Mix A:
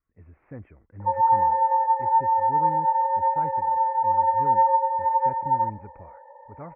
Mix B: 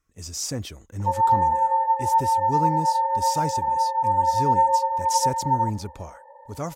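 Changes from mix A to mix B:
speech +9.5 dB; master: remove steep low-pass 2300 Hz 72 dB/oct

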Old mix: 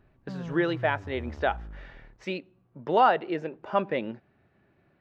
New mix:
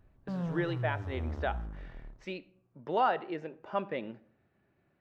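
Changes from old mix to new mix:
speech -8.0 dB; reverb: on, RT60 0.60 s

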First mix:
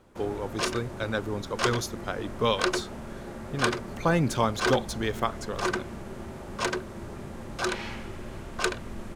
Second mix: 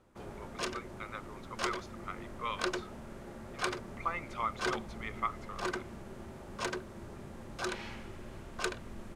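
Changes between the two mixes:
speech: add double band-pass 1600 Hz, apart 0.71 oct; background -7.5 dB

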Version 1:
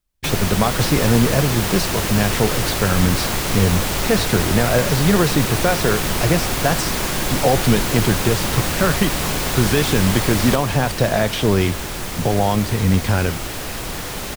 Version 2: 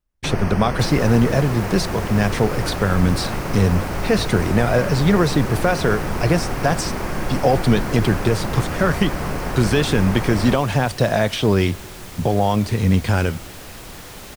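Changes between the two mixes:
first sound: add running mean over 12 samples; second sound -9.5 dB

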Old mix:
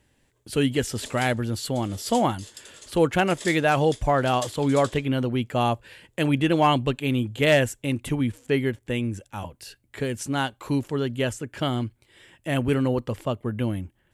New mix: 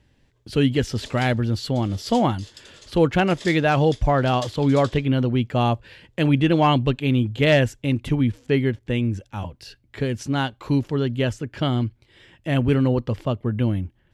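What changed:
speech: add low shelf 250 Hz +7.5 dB; master: add resonant high shelf 6600 Hz -8 dB, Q 1.5

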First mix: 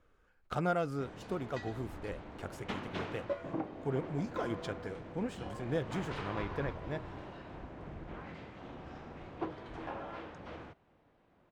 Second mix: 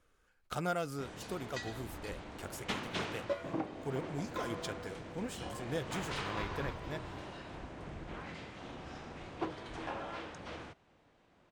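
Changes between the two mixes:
speech -4.0 dB; master: remove LPF 1600 Hz 6 dB/oct

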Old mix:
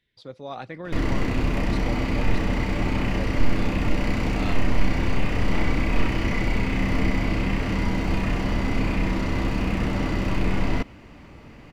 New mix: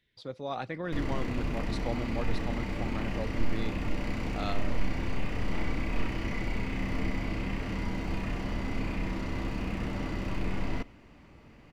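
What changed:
background -10.0 dB; reverb: on

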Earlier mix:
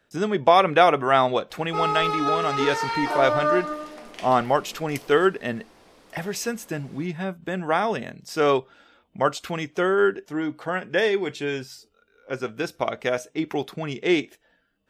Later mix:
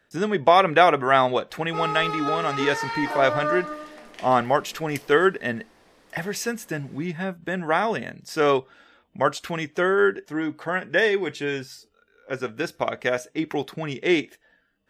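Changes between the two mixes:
background -3.5 dB; master: add bell 1800 Hz +5.5 dB 0.29 oct

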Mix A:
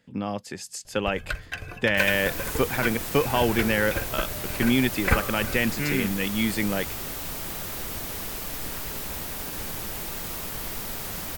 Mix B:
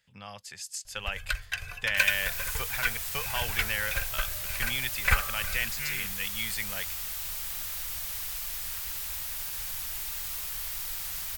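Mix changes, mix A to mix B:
first sound +5.5 dB; master: add passive tone stack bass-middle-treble 10-0-10

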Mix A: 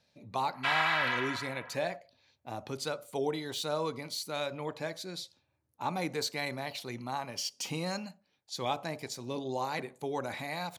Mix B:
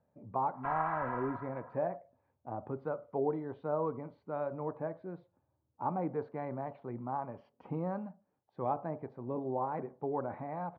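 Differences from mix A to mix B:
background: add tilt -2.5 dB/oct; master: add LPF 1200 Hz 24 dB/oct

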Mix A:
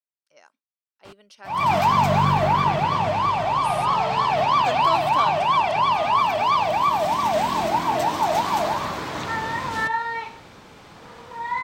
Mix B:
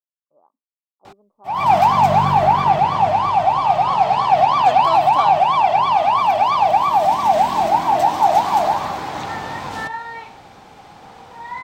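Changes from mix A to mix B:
speech: add rippled Chebyshev low-pass 1200 Hz, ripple 3 dB; first sound: add bell 780 Hz +13 dB 0.3 oct; second sound -4.0 dB

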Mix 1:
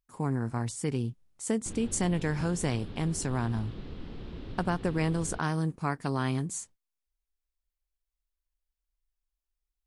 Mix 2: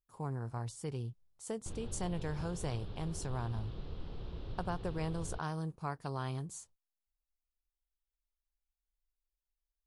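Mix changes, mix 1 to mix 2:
speech -4.5 dB; master: add graphic EQ 250/2000/8000 Hz -11/-9/-7 dB

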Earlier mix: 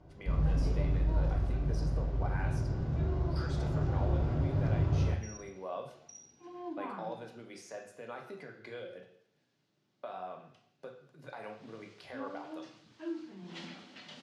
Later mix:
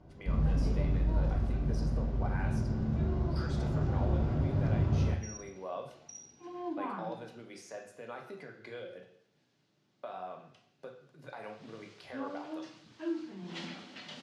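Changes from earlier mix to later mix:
first sound: add bell 220 Hz +13 dB 0.21 oct; second sound +3.5 dB

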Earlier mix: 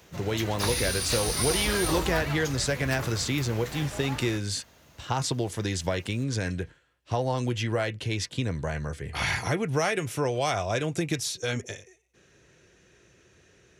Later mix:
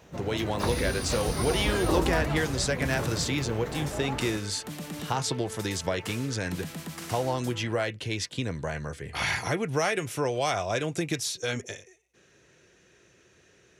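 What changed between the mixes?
first sound: add tilt shelf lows +9 dB, about 1200 Hz; second sound: unmuted; master: add low shelf 110 Hz -8 dB

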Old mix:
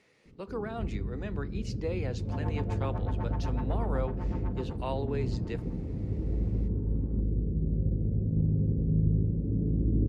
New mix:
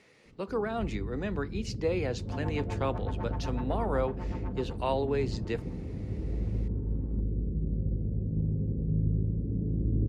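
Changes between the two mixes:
speech +5.5 dB; reverb: off

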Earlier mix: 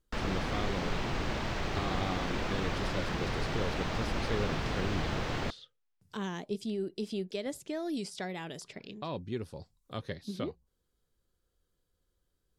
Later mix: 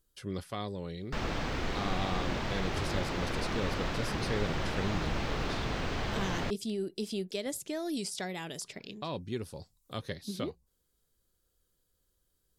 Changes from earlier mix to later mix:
speech: remove LPF 3200 Hz 6 dB/oct; background: entry +1.00 s

